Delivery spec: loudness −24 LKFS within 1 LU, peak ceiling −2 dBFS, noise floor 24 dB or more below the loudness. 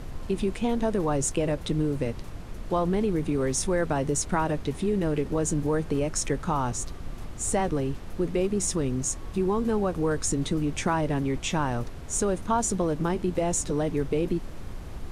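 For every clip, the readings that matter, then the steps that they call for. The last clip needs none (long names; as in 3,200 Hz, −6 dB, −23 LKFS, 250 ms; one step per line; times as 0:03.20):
background noise floor −38 dBFS; target noise floor −52 dBFS; integrated loudness −27.5 LKFS; sample peak −11.0 dBFS; target loudness −24.0 LKFS
→ noise reduction from a noise print 14 dB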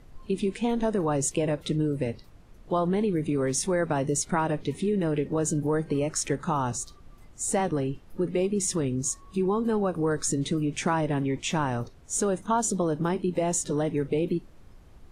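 background noise floor −51 dBFS; target noise floor −52 dBFS
→ noise reduction from a noise print 6 dB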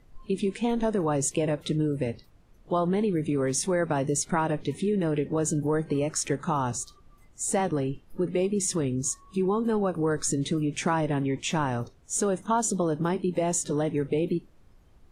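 background noise floor −56 dBFS; integrated loudness −27.5 LKFS; sample peak −11.5 dBFS; target loudness −24.0 LKFS
→ level +3.5 dB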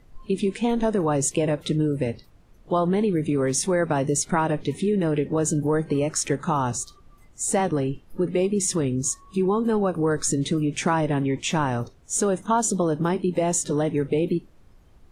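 integrated loudness −24.0 LKFS; sample peak −8.0 dBFS; background noise floor −53 dBFS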